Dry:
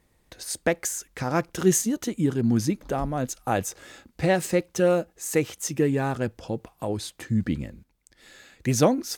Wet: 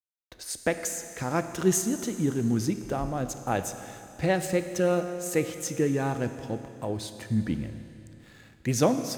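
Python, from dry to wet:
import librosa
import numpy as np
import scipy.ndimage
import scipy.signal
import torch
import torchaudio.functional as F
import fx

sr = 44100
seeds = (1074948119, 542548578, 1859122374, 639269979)

y = fx.backlash(x, sr, play_db=-47.5)
y = fx.rev_schroeder(y, sr, rt60_s=2.8, comb_ms=25, drr_db=9.0)
y = y * 10.0 ** (-3.0 / 20.0)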